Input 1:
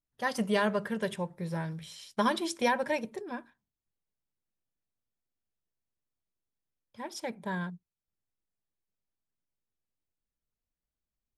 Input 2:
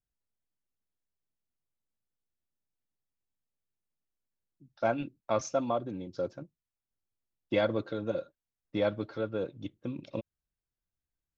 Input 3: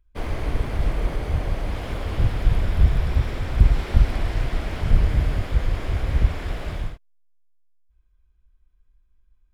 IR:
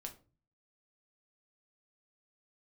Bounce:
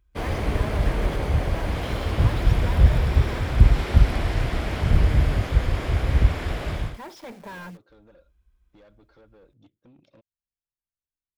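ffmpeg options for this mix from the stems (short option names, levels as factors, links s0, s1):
-filter_complex "[0:a]lowpass=5000,asplit=2[s0][s1];[s1]highpass=f=720:p=1,volume=70.8,asoftclip=type=tanh:threshold=0.188[s2];[s0][s2]amix=inputs=2:normalize=0,lowpass=f=1400:p=1,volume=0.501,acrusher=bits=7:dc=4:mix=0:aa=0.000001,volume=0.188[s3];[1:a]acompressor=threshold=0.0178:ratio=6,asoftclip=type=tanh:threshold=0.0112,volume=0.299[s4];[2:a]highpass=44,volume=1.41[s5];[s3][s4][s5]amix=inputs=3:normalize=0"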